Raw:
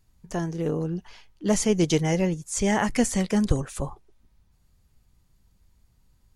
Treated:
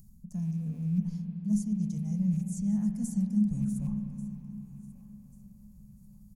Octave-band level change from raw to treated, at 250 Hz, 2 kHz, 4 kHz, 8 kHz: -3.0 dB, under -30 dB, under -25 dB, -16.5 dB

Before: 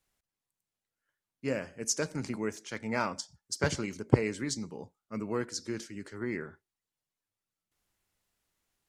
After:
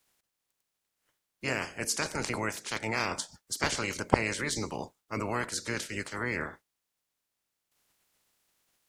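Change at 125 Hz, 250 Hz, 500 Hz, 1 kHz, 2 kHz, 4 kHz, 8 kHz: -2.5, -2.5, -1.0, +5.5, +6.5, +5.0, +2.0 dB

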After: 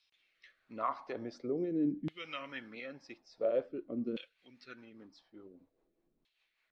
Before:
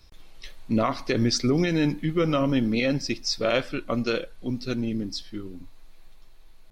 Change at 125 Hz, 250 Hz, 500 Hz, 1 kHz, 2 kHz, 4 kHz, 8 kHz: -22.0 dB, -14.0 dB, -11.0 dB, -9.5 dB, -16.0 dB, -21.0 dB, under -30 dB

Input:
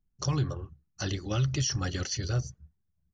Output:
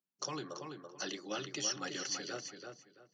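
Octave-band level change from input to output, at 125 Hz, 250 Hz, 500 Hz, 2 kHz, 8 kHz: -25.5 dB, -9.0 dB, -4.5 dB, -3.0 dB, n/a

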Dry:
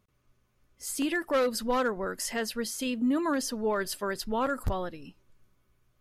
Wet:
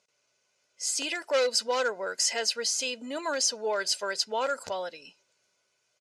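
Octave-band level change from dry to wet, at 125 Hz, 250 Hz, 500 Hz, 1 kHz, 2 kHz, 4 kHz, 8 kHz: under -15 dB, -13.0 dB, +0.5 dB, -0.5 dB, +1.5 dB, +9.0 dB, +8.0 dB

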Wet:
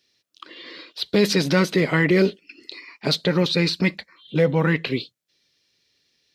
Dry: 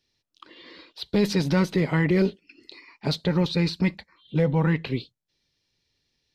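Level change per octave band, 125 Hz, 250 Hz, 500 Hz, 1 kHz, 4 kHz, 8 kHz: +0.5, +2.0, +5.5, +3.5, +8.0, +8.0 dB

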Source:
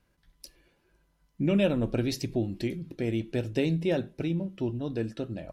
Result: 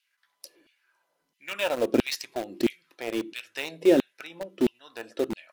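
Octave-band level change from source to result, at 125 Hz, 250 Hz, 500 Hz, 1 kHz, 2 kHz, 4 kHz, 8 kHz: -15.0, +0.5, +3.5, +7.0, +5.5, +5.0, +5.5 dB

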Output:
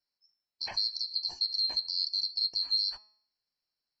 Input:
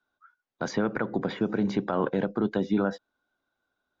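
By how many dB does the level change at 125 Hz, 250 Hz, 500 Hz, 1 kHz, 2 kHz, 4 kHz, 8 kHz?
under -30 dB, under -35 dB, under -30 dB, under -15 dB, under -15 dB, +19.0 dB, n/a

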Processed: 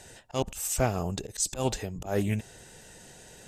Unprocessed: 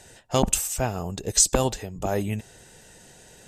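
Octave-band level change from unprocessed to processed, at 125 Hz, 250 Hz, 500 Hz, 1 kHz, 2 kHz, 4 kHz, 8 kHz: -2.5, -3.5, -4.5, -5.5, -3.0, -8.0, -9.5 dB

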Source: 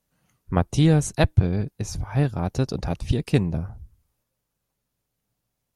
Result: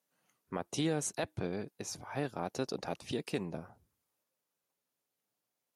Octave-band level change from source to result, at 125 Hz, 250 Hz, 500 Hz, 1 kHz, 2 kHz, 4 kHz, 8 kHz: -21.5, -14.0, -9.5, -9.5, -10.0, -8.0, -5.5 dB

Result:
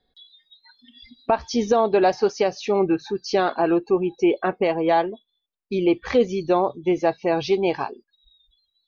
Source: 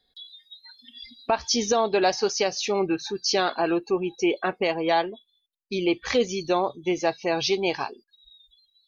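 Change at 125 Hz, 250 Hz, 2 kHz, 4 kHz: +5.0, +4.5, -1.0, -6.5 dB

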